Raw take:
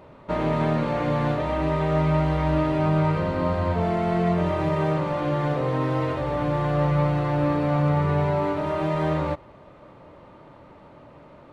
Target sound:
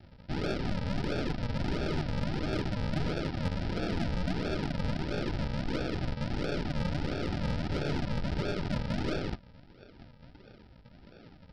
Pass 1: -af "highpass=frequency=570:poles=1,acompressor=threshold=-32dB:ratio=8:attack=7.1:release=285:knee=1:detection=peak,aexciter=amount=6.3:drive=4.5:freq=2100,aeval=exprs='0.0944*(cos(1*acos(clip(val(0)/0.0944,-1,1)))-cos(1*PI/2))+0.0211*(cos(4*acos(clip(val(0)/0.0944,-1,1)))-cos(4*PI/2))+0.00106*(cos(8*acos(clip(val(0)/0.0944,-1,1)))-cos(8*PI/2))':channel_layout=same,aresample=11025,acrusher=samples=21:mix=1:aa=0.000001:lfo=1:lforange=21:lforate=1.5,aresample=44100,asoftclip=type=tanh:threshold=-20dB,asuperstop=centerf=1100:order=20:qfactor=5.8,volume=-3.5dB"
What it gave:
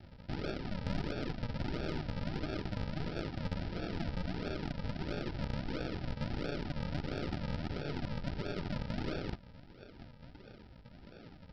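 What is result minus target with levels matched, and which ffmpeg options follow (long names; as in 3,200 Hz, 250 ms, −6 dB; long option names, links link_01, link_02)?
downward compressor: peak gain reduction +10 dB
-af "highpass=frequency=570:poles=1,aexciter=amount=6.3:drive=4.5:freq=2100,aeval=exprs='0.0944*(cos(1*acos(clip(val(0)/0.0944,-1,1)))-cos(1*PI/2))+0.0211*(cos(4*acos(clip(val(0)/0.0944,-1,1)))-cos(4*PI/2))+0.00106*(cos(8*acos(clip(val(0)/0.0944,-1,1)))-cos(8*PI/2))':channel_layout=same,aresample=11025,acrusher=samples=21:mix=1:aa=0.000001:lfo=1:lforange=21:lforate=1.5,aresample=44100,asoftclip=type=tanh:threshold=-20dB,asuperstop=centerf=1100:order=20:qfactor=5.8,volume=-3.5dB"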